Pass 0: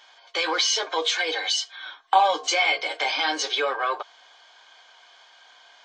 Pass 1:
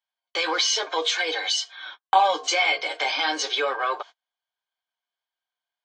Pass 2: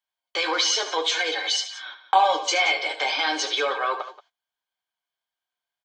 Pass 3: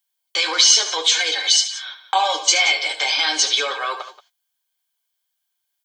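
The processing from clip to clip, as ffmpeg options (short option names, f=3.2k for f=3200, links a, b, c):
-af "agate=range=-38dB:threshold=-40dB:ratio=16:detection=peak"
-af "aecho=1:1:74|179:0.266|0.178"
-af "crystalizer=i=6:c=0,volume=-3dB"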